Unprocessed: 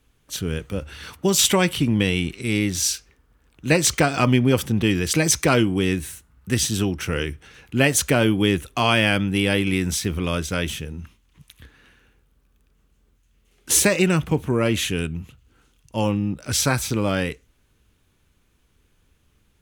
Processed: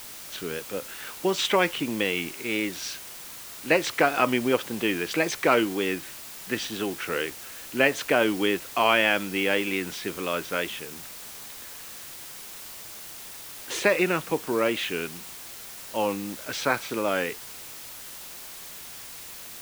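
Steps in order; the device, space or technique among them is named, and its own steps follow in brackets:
wax cylinder (band-pass filter 390–2,800 Hz; tape wow and flutter; white noise bed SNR 13 dB)

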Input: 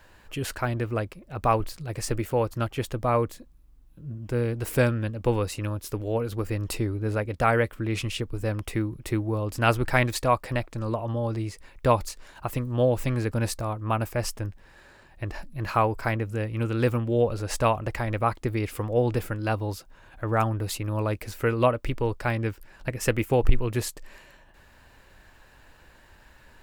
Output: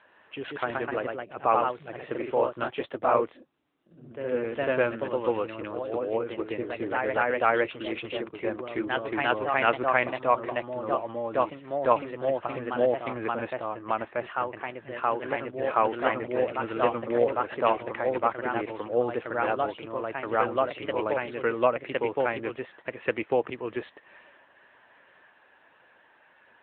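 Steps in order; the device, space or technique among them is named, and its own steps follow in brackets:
0:07.74–0:09.32: low-shelf EQ 75 Hz −4.5 dB
delay with pitch and tempo change per echo 161 ms, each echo +1 semitone, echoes 2
telephone (band-pass filter 350–3,500 Hz; AMR narrowband 10.2 kbit/s 8,000 Hz)

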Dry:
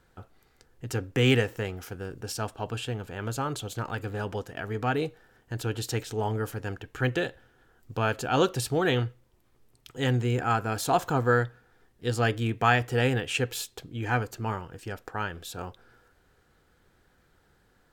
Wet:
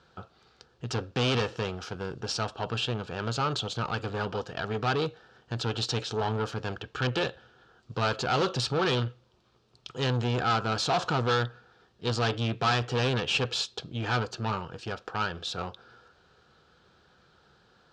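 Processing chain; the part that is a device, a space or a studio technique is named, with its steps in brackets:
guitar amplifier (tube saturation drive 29 dB, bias 0.5; bass and treble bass 0 dB, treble +14 dB; loudspeaker in its box 82–4,300 Hz, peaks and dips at 99 Hz −5 dB, 280 Hz −7 dB, 1,300 Hz +4 dB, 2,000 Hz −9 dB)
level +6.5 dB

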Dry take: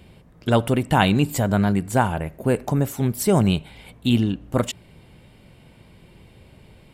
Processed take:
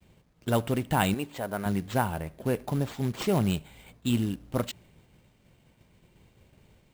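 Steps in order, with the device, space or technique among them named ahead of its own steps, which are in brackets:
downward expander −44 dBFS
0:01.14–0:01.66: bass and treble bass −14 dB, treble −11 dB
early companding sampler (sample-rate reduction 11,000 Hz, jitter 0%; log-companded quantiser 6 bits)
level −7.5 dB

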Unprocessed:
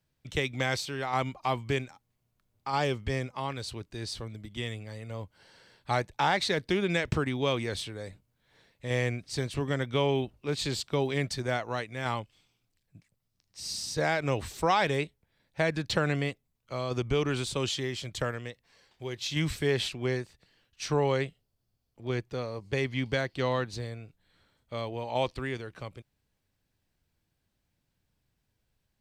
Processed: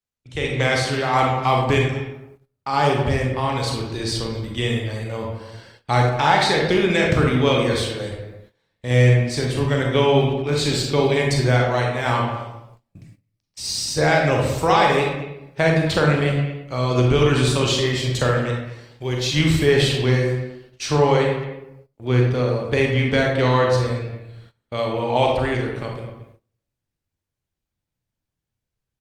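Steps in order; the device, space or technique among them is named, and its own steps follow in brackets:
speakerphone in a meeting room (convolution reverb RT60 0.85 s, pre-delay 32 ms, DRR −0.5 dB; far-end echo of a speakerphone 220 ms, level −13 dB; automatic gain control gain up to 11.5 dB; noise gate −44 dBFS, range −19 dB; level −2 dB; Opus 32 kbit/s 48,000 Hz)

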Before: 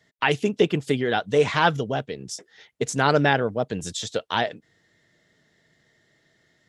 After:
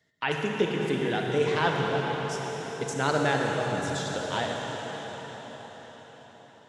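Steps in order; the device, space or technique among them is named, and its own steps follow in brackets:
cathedral (convolution reverb RT60 5.8 s, pre-delay 39 ms, DRR −1 dB)
level −7.5 dB

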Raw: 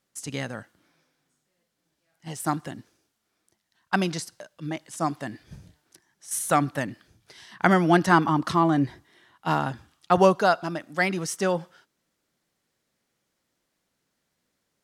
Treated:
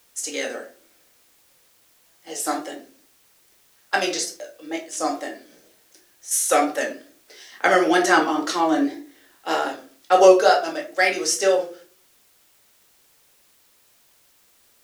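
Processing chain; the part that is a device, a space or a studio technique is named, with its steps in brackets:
high-pass filter 160 Hz
high-pass filter 390 Hz 24 dB per octave
graphic EQ with 15 bands 400 Hz +5 dB, 1,000 Hz −10 dB, 6,300 Hz +7 dB
rectangular room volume 270 cubic metres, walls furnished, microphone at 2.1 metres
plain cassette with noise reduction switched in (one half of a high-frequency compander decoder only; tape wow and flutter; white noise bed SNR 35 dB)
level +3 dB

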